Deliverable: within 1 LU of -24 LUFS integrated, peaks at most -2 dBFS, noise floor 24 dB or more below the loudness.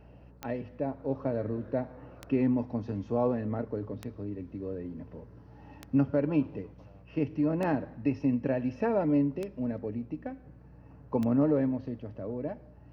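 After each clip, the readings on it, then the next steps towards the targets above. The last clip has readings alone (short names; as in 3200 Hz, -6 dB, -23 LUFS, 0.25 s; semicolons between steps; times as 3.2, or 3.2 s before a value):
clicks 7; hum 60 Hz; harmonics up to 180 Hz; hum level -53 dBFS; loudness -31.5 LUFS; peak -16.0 dBFS; loudness target -24.0 LUFS
-> de-click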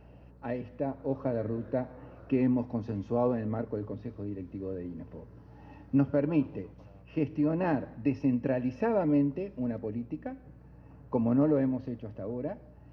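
clicks 0; hum 60 Hz; harmonics up to 180 Hz; hum level -53 dBFS
-> de-hum 60 Hz, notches 3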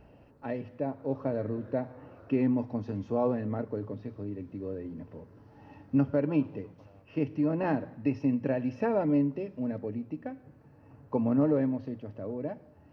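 hum none; loudness -31.5 LUFS; peak -16.0 dBFS; loudness target -24.0 LUFS
-> gain +7.5 dB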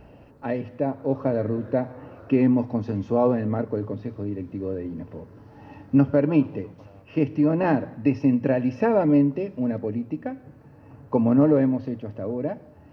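loudness -24.0 LUFS; peak -8.5 dBFS; noise floor -50 dBFS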